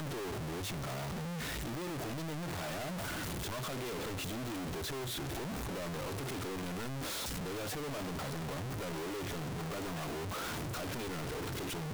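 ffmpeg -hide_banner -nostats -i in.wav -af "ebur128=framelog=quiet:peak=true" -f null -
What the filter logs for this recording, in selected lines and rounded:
Integrated loudness:
  I:         -38.7 LUFS
  Threshold: -48.7 LUFS
Loudness range:
  LRA:         0.4 LU
  Threshold: -58.7 LUFS
  LRA low:   -38.9 LUFS
  LRA high:  -38.5 LUFS
True peak:
  Peak:      -32.3 dBFS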